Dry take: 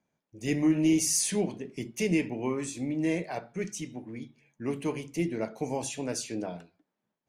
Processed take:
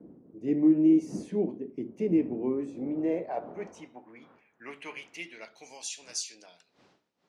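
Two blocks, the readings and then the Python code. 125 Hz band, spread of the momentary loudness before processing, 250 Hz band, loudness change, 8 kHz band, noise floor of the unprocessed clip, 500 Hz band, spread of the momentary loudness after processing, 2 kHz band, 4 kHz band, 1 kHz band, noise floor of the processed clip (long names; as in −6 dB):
−6.5 dB, 15 LU, +1.5 dB, +1.5 dB, −9.5 dB, −85 dBFS, 0.0 dB, 20 LU, −6.5 dB, −4.5 dB, −3.0 dB, −73 dBFS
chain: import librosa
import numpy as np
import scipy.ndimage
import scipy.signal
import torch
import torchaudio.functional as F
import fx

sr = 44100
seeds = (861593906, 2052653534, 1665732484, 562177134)

y = fx.dmg_wind(x, sr, seeds[0], corner_hz=240.0, level_db=-42.0)
y = fx.filter_sweep_bandpass(y, sr, from_hz=310.0, to_hz=5200.0, start_s=2.5, end_s=6.01, q=1.5)
y = fx.highpass(y, sr, hz=130.0, slope=6)
y = y * librosa.db_to_amplitude(4.0)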